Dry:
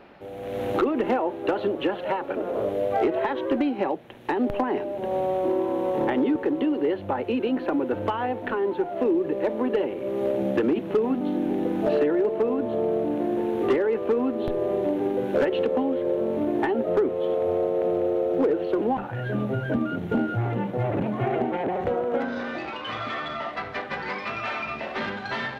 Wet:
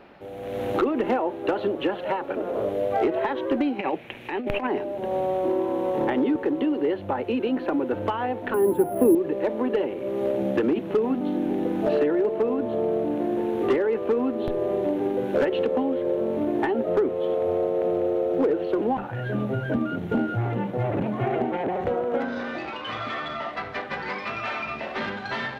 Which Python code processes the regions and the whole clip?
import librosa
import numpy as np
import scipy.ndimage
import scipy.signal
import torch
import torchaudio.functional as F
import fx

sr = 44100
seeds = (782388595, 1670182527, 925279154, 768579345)

y = fx.chain(x, sr, fx.peak_eq(hz=2400.0, db=13.0, octaves=0.69),
    fx.over_compress(threshold_db=-26.0, ratio=-0.5), at=(3.79, 4.67))
y = fx.chain(y, sr, fx.highpass(hz=60.0, slope=12),
    fx.tilt_eq(slope=-3.5),
    fx.resample_bad(factor=4, down='none', up='hold'), at=(8.54, 9.15))